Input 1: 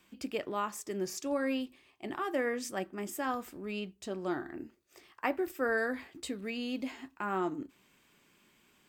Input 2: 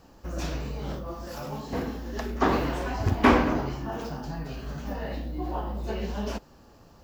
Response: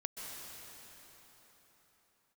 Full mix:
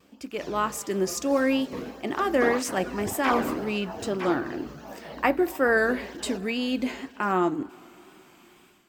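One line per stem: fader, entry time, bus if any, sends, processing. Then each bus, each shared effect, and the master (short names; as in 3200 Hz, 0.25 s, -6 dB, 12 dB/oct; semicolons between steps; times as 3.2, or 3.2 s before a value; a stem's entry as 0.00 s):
-1.5 dB, 0.00 s, send -20 dB, no echo send, dry
-1.0 dB, 0.00 s, no send, echo send -19 dB, tape flanging out of phase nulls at 1.7 Hz, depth 1.4 ms; auto duck -11 dB, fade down 0.30 s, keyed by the first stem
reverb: on, RT60 4.3 s, pre-delay 0.118 s
echo: echo 0.955 s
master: AGC gain up to 10 dB; vibrato 2 Hz 49 cents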